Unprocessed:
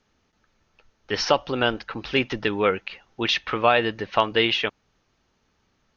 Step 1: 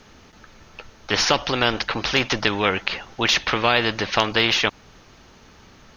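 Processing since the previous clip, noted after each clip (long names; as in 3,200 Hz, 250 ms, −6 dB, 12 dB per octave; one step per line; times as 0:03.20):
every bin compressed towards the loudest bin 2 to 1
level +3.5 dB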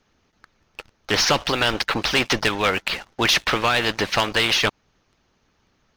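harmonic and percussive parts rebalanced harmonic −7 dB
leveller curve on the samples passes 3
level −7.5 dB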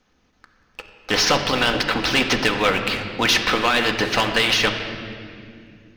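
on a send at −3 dB: high-frequency loss of the air 66 metres + convolution reverb RT60 2.5 s, pre-delay 4 ms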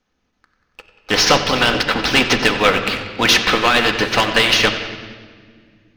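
bucket-brigade delay 93 ms, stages 4,096, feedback 70%, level −12.5 dB
expander for the loud parts 1.5 to 1, over −39 dBFS
level +5.5 dB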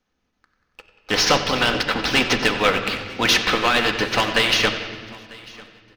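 repeating echo 946 ms, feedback 30%, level −23 dB
level −4 dB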